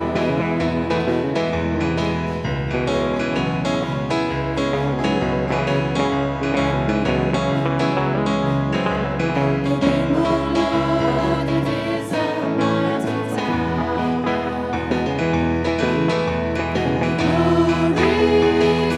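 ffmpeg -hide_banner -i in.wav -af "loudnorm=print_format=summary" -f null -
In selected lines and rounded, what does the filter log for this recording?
Input Integrated:    -19.7 LUFS
Input True Peak:      -3.5 dBTP
Input LRA:             3.5 LU
Input Threshold:     -29.7 LUFS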